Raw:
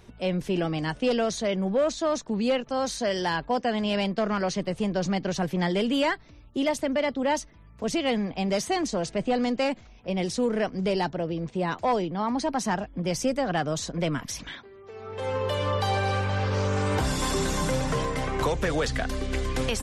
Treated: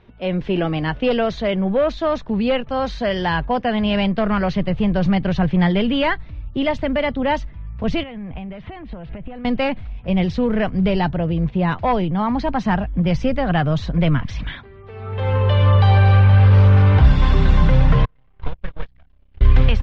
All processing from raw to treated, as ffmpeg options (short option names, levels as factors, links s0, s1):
-filter_complex "[0:a]asettb=1/sr,asplit=3[s0][s1][s2];[s0]atrim=end=8.034[s3];[s1]atrim=start=8.03:end=9.45,asetpts=PTS-STARTPTS,afade=t=in:d=0.004:c=qsin,afade=t=out:st=1.416:d=0.004:c=qsin,lowpass=f=3100:w=0.5412,lowpass=f=3100:w=1.3066,acompressor=threshold=0.0126:ratio=8:attack=3.2:release=140:knee=1:detection=peak[s4];[s2]atrim=start=9.446[s5];[s3][s4]acrossfade=d=0.004:c1=hsin:c2=qsin[s6];[s6][s5]acrossfade=d=0.004:c1=qsin:c2=hsin,asettb=1/sr,asplit=3[s7][s8][s9];[s7]atrim=end=18.054[s10];[s8]atrim=start=18.05:end=19.41,asetpts=PTS-STARTPTS,afade=t=in:d=0.004:c=qsin,afade=t=out:st=1.356:d=0.004:c=qsin,agate=range=0.00891:threshold=0.0708:ratio=16:release=100:detection=peak,equalizer=f=2900:w=4.9:g=4,aeval=exprs='max(val(0),0)':c=same[s11];[s9]atrim=start=19.406[s12];[s10][s11]acrossfade=d=0.004:c1=hsin:c2=qsin[s13];[s13][s12]acrossfade=d=0.004:c1=qsin:c2=hsin,lowpass=f=3500:w=0.5412,lowpass=f=3500:w=1.3066,asubboost=boost=6:cutoff=130,dynaudnorm=f=170:g=3:m=2.24"